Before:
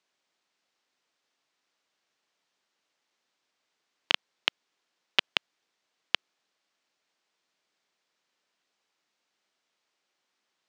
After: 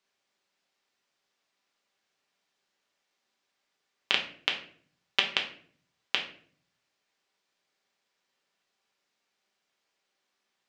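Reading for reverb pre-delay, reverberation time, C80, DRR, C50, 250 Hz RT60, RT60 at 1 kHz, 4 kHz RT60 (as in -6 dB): 5 ms, 0.50 s, 13.5 dB, 0.5 dB, 9.0 dB, 0.85 s, 0.45 s, 0.35 s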